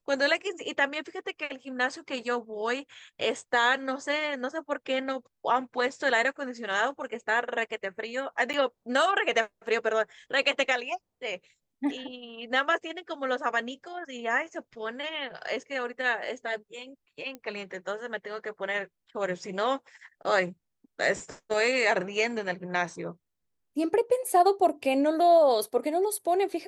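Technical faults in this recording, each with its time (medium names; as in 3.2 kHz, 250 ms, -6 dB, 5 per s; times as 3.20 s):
8.53–8.54 s: dropout 8.6 ms
17.35 s: pop -25 dBFS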